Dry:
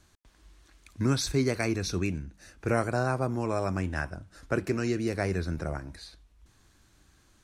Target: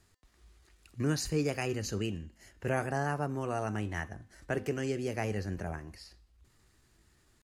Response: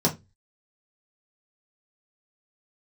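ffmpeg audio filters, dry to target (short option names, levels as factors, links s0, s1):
-af "asetrate=49501,aresample=44100,atempo=0.890899,bandreject=f=256.1:t=h:w=4,bandreject=f=512.2:t=h:w=4,bandreject=f=768.3:t=h:w=4,bandreject=f=1024.4:t=h:w=4,bandreject=f=1280.5:t=h:w=4,bandreject=f=1536.6:t=h:w=4,bandreject=f=1792.7:t=h:w=4,bandreject=f=2048.8:t=h:w=4,bandreject=f=2304.9:t=h:w=4,bandreject=f=2561:t=h:w=4,bandreject=f=2817.1:t=h:w=4,bandreject=f=3073.2:t=h:w=4,bandreject=f=3329.3:t=h:w=4,bandreject=f=3585.4:t=h:w=4,bandreject=f=3841.5:t=h:w=4,bandreject=f=4097.6:t=h:w=4,bandreject=f=4353.7:t=h:w=4,bandreject=f=4609.8:t=h:w=4,bandreject=f=4865.9:t=h:w=4,bandreject=f=5122:t=h:w=4,bandreject=f=5378.1:t=h:w=4,bandreject=f=5634.2:t=h:w=4,bandreject=f=5890.3:t=h:w=4,bandreject=f=6146.4:t=h:w=4,bandreject=f=6402.5:t=h:w=4,bandreject=f=6658.6:t=h:w=4,bandreject=f=6914.7:t=h:w=4,bandreject=f=7170.8:t=h:w=4,bandreject=f=7426.9:t=h:w=4,bandreject=f=7683:t=h:w=4,bandreject=f=7939.1:t=h:w=4,bandreject=f=8195.2:t=h:w=4,bandreject=f=8451.3:t=h:w=4,volume=0.596"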